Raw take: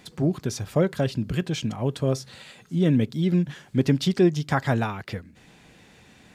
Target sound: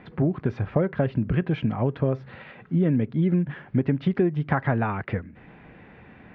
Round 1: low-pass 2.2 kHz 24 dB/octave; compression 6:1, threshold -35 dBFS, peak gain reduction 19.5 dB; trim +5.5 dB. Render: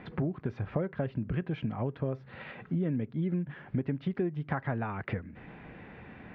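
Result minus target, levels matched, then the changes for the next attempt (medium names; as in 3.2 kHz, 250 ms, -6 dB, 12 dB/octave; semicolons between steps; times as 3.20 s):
compression: peak gain reduction +9 dB
change: compression 6:1, threshold -24 dBFS, peak gain reduction 10 dB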